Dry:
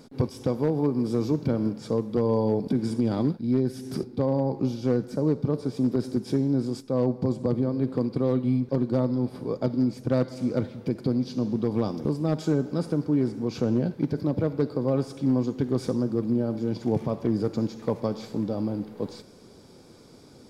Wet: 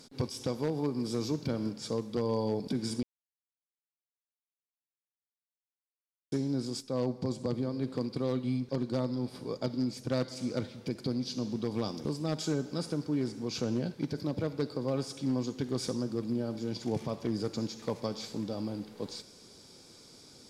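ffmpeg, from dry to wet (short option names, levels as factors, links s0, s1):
-filter_complex "[0:a]asplit=3[s0][s1][s2];[s0]atrim=end=3.03,asetpts=PTS-STARTPTS,afade=t=out:st=3.026:d=0.004:c=hsin[s3];[s1]atrim=start=3.03:end=6.32,asetpts=PTS-STARTPTS,volume=0[s4];[s2]atrim=start=6.32,asetpts=PTS-STARTPTS,afade=t=in:d=0.004:c=hsin[s5];[s3][s4][s5]concat=n=3:v=0:a=1,equalizer=f=6100:w=0.34:g=13.5,volume=0.398"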